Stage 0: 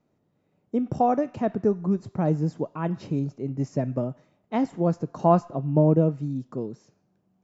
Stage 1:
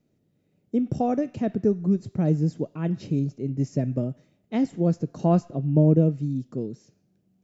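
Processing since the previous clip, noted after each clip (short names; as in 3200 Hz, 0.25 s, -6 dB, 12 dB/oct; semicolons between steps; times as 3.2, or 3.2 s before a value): bell 1000 Hz -14.5 dB 1.3 oct; gain +3 dB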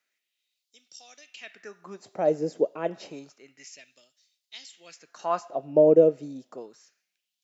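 LFO high-pass sine 0.29 Hz 490–4500 Hz; gain +2.5 dB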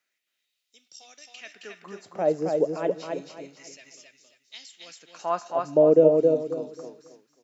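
feedback echo 0.269 s, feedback 28%, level -3.5 dB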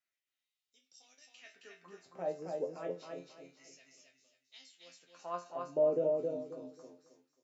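resonator bank F2 fifth, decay 0.22 s; gain -3 dB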